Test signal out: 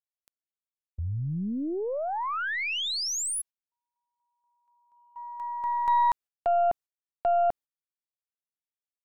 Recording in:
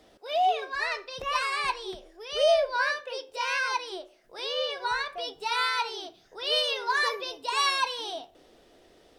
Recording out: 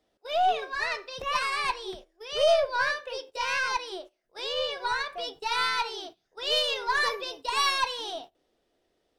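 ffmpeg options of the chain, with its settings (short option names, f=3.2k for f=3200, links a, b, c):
-af "agate=range=-16dB:threshold=-44dB:ratio=16:detection=peak,aeval=exprs='0.251*(cos(1*acos(clip(val(0)/0.251,-1,1)))-cos(1*PI/2))+0.01*(cos(6*acos(clip(val(0)/0.251,-1,1)))-cos(6*PI/2))':c=same"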